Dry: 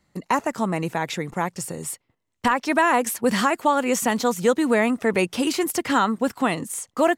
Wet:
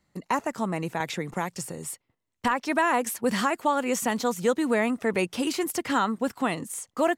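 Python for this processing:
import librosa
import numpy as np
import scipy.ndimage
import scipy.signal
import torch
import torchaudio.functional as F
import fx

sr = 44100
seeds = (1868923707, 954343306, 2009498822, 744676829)

y = fx.band_squash(x, sr, depth_pct=70, at=(1.0, 1.7))
y = y * librosa.db_to_amplitude(-4.5)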